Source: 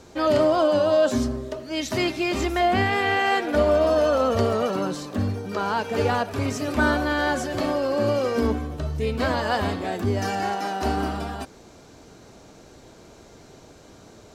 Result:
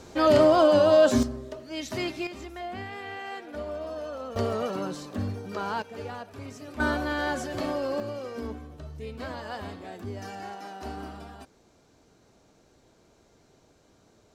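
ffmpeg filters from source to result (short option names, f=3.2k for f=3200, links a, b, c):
-af "asetnsamples=n=441:p=0,asendcmd='1.23 volume volume -7dB;2.27 volume volume -16dB;4.36 volume volume -6dB;5.82 volume volume -15dB;6.8 volume volume -5.5dB;8 volume volume -13dB',volume=1dB"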